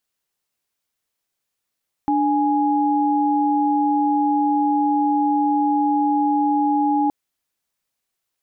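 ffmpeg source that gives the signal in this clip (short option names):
-f lavfi -i "aevalsrc='0.119*(sin(2*PI*293.66*t)+sin(2*PI*830.61*t))':d=5.02:s=44100"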